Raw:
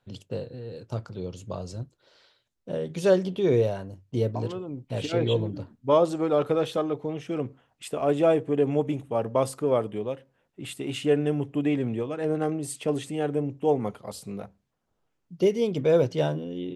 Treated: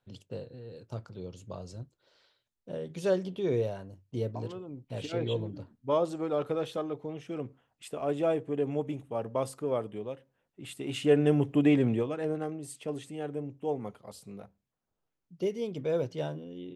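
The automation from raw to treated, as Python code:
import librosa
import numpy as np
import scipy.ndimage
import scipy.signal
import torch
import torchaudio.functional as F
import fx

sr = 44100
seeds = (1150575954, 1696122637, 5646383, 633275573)

y = fx.gain(x, sr, db=fx.line((10.62, -7.0), (11.33, 2.0), (11.9, 2.0), (12.5, -9.0)))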